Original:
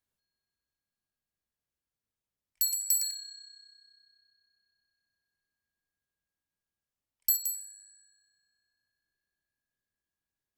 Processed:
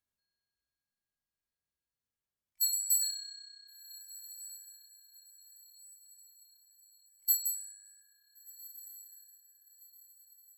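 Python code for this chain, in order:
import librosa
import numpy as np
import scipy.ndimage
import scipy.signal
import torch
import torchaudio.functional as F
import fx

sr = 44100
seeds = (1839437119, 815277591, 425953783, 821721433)

y = fx.hpss(x, sr, part='percussive', gain_db=-15)
y = fx.echo_diffused(y, sr, ms=1452, feedback_pct=44, wet_db=-16.0)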